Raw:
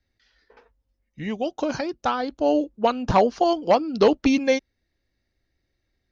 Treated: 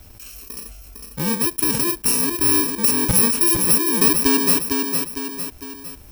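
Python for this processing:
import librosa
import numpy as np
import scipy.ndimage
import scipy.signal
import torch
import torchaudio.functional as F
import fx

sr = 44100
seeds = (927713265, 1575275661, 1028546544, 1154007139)

y = fx.bit_reversed(x, sr, seeds[0], block=64)
y = fx.echo_feedback(y, sr, ms=455, feedback_pct=23, wet_db=-9.5)
y = fx.env_flatten(y, sr, amount_pct=50)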